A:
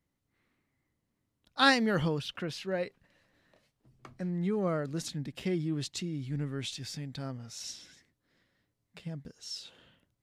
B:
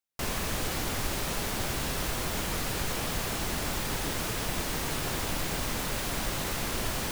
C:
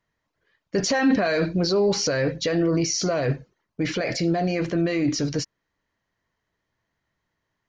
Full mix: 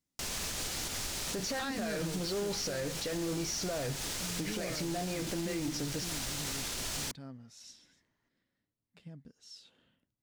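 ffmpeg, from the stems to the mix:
-filter_complex "[0:a]equalizer=f=240:t=o:w=0.77:g=6.5,volume=-11dB[a];[1:a]equalizer=f=6.1k:w=0.52:g=11.5,volume=-7.5dB[b];[2:a]asoftclip=type=tanh:threshold=-17.5dB,adelay=600,volume=-2.5dB[c];[b][c]amix=inputs=2:normalize=0,bandreject=f=1.1k:w=23,acompressor=threshold=-31dB:ratio=6,volume=0dB[d];[a][d]amix=inputs=2:normalize=0,alimiter=level_in=2.5dB:limit=-24dB:level=0:latency=1:release=92,volume=-2.5dB"

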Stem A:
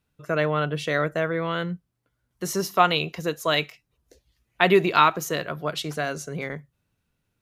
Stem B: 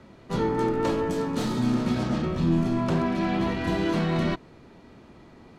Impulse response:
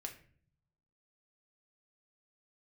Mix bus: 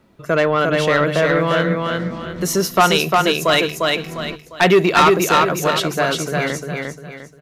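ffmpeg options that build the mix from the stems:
-filter_complex "[0:a]acontrast=77,volume=2dB,asplit=3[a][b][c];[b]volume=-3.5dB[d];[1:a]volume=-5.5dB[e];[c]apad=whole_len=246212[f];[e][f]sidechaincompress=threshold=-26dB:ratio=8:attack=16:release=517[g];[d]aecho=0:1:351|702|1053|1404|1755:1|0.34|0.116|0.0393|0.0134[h];[a][g][h]amix=inputs=3:normalize=0,bandreject=f=50:t=h:w=6,bandreject=f=100:t=h:w=6,bandreject=f=150:t=h:w=6,asoftclip=type=tanh:threshold=-5.5dB"

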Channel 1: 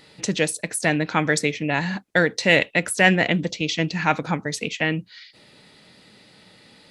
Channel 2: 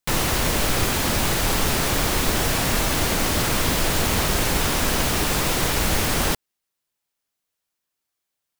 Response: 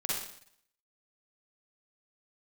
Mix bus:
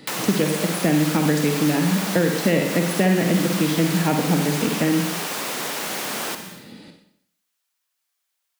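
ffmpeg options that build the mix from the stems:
-filter_complex "[0:a]volume=-2dB,asplit=2[a][b];[b]volume=-4.5dB[c];[1:a]highpass=1.1k,volume=2.5dB,asplit=2[d][e];[e]volume=-10.5dB[f];[2:a]atrim=start_sample=2205[g];[c][f]amix=inputs=2:normalize=0[h];[h][g]afir=irnorm=-1:irlink=0[i];[a][d][i]amix=inputs=3:normalize=0,equalizer=f=230:w=0.67:g=12,acrossover=split=200|700[j][k][l];[j]acompressor=threshold=-28dB:ratio=4[m];[k]acompressor=threshold=-20dB:ratio=4[n];[l]acompressor=threshold=-28dB:ratio=4[o];[m][n][o]amix=inputs=3:normalize=0"

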